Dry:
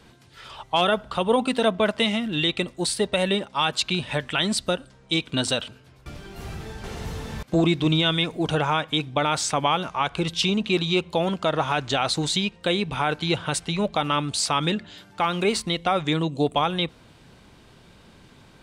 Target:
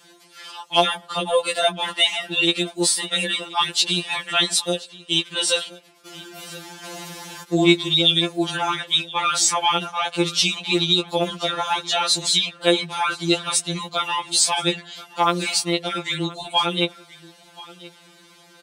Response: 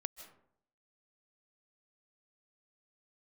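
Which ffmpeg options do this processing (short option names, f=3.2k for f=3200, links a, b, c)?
-filter_complex "[0:a]highpass=280,highshelf=f=3.4k:g=9,bandreject=f=480:w=12,asplit=2[a][b];[b]asoftclip=type=tanh:threshold=-12dB,volume=-12dB[c];[a][c]amix=inputs=2:normalize=0,aecho=1:1:1027:0.0944,afftfilt=real='re*2.83*eq(mod(b,8),0)':imag='im*2.83*eq(mod(b,8),0)':win_size=2048:overlap=0.75,volume=1.5dB"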